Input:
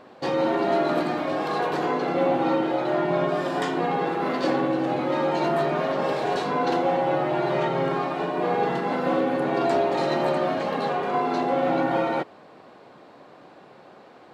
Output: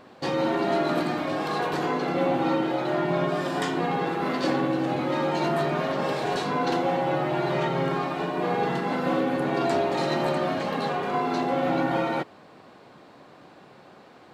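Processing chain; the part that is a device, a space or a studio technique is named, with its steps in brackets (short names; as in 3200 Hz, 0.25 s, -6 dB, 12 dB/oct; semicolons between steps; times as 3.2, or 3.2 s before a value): smiley-face EQ (low shelf 170 Hz +4.5 dB; bell 550 Hz -3.5 dB 1.7 oct; high shelf 5800 Hz +5 dB)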